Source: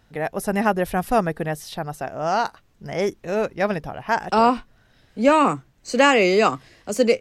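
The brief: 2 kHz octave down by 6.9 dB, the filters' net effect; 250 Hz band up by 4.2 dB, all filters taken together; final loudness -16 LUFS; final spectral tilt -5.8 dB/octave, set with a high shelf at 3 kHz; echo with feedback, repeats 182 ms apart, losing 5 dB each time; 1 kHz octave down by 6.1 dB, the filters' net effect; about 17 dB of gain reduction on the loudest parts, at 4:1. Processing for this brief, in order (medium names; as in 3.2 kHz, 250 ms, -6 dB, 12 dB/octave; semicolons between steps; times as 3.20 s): peaking EQ 250 Hz +5.5 dB; peaking EQ 1 kHz -7 dB; peaking EQ 2 kHz -5.5 dB; treble shelf 3 kHz -3.5 dB; compression 4:1, threshold -33 dBFS; feedback delay 182 ms, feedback 56%, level -5 dB; trim +18.5 dB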